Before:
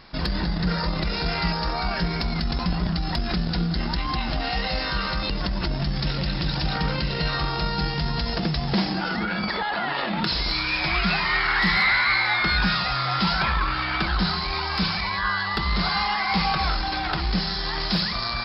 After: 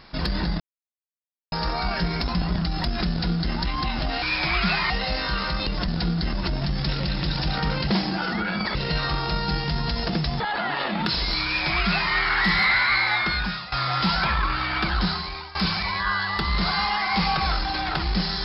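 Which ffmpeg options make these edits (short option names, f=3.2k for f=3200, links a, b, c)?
-filter_complex "[0:a]asplit=13[a][b][c][d][e][f][g][h][i][j][k][l][m];[a]atrim=end=0.6,asetpts=PTS-STARTPTS,afade=t=out:st=0.596:d=0.004:c=hsin[n];[b]atrim=start=0.6:end=1.52,asetpts=PTS-STARTPTS,volume=0[o];[c]atrim=start=1.52:end=2.242,asetpts=PTS-STARTPTS,afade=t=in:d=0.004:c=hsin[p];[d]atrim=start=2.548:end=4.532[q];[e]atrim=start=10.628:end=11.312[r];[f]atrim=start=4.528:end=5.512[s];[g]atrim=start=3.408:end=3.862[t];[h]atrim=start=5.508:end=7.052[u];[i]atrim=start=8.698:end=9.582[v];[j]atrim=start=7.048:end=8.702[w];[k]atrim=start=9.578:end=12.9,asetpts=PTS-STARTPTS,afade=t=out:st=2.732:d=0.59:silence=0.16788[x];[l]atrim=start=12.9:end=14.73,asetpts=PTS-STARTPTS,afade=t=in:d=0.004:c=hsin:silence=0.16788,afade=t=out:st=1.29:d=0.54:silence=0.133352[y];[m]atrim=start=14.73,asetpts=PTS-STARTPTS,afade=t=in:d=0.004:c=hsin:silence=0.133352[z];[n][o][p]concat=n=3:v=0:a=1[aa];[aa][q]acrossfade=d=0.004:c1=hsin:c2=hsin[ab];[ab][r]acrossfade=d=0.004:c1=hsin:c2=hsin[ac];[ac][s]acrossfade=d=0.004:c1=hsin:c2=hsin[ad];[ad][t]acrossfade=d=0.004:c1=hsin:c2=hsin[ae];[ae][u]acrossfade=d=0.004:c1=hsin:c2=hsin[af];[af][v]acrossfade=d=0.004:c1=hsin:c2=hsin[ag];[ag][w]acrossfade=d=0.004:c1=hsin:c2=hsin[ah];[x][y][z]concat=n=3:v=0:a=1[ai];[ah][ai]acrossfade=d=0.004:c1=hsin:c2=hsin"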